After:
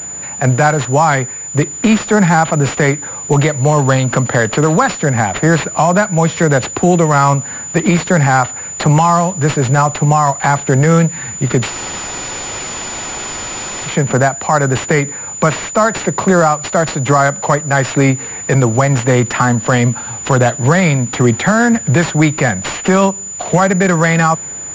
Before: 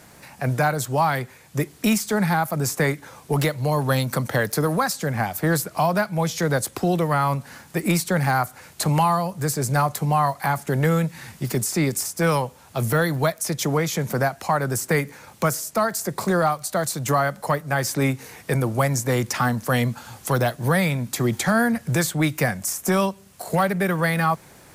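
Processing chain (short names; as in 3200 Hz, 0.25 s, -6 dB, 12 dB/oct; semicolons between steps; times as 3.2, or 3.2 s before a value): spectral freeze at 11.72, 2.16 s; maximiser +12 dB; pulse-width modulation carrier 7000 Hz; gain -1 dB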